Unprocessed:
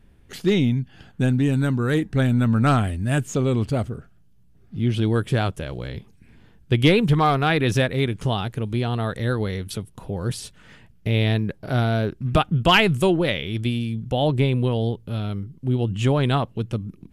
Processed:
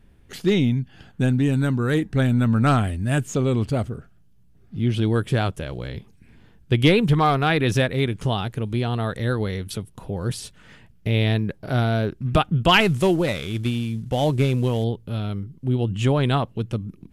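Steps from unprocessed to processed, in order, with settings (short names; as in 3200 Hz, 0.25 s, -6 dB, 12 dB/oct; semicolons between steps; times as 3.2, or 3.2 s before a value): 12.8–14.84 CVSD 64 kbps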